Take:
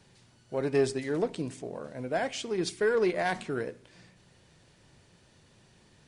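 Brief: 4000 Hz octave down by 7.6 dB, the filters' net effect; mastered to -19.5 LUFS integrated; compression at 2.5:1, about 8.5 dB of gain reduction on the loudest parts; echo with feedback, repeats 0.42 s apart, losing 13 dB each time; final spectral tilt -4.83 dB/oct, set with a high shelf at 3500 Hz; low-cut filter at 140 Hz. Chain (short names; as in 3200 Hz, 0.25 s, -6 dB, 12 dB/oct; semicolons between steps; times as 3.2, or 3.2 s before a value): HPF 140 Hz; high shelf 3500 Hz -4.5 dB; bell 4000 Hz -7 dB; compressor 2.5:1, threshold -35 dBFS; feedback echo 0.42 s, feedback 22%, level -13 dB; gain +18 dB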